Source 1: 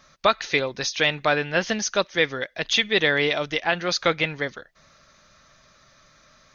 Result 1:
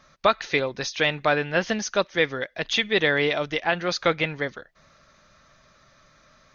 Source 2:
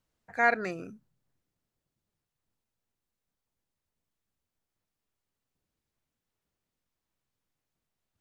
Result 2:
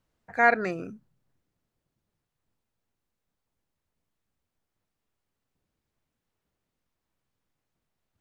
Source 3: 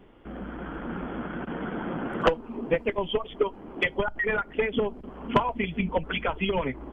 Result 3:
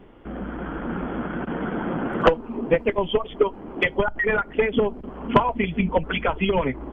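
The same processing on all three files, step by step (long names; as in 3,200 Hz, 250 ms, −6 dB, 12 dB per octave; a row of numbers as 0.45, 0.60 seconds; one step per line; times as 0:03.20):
high-shelf EQ 3,300 Hz −6.5 dB
loudness normalisation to −24 LKFS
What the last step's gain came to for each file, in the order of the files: +0.5, +4.5, +5.5 decibels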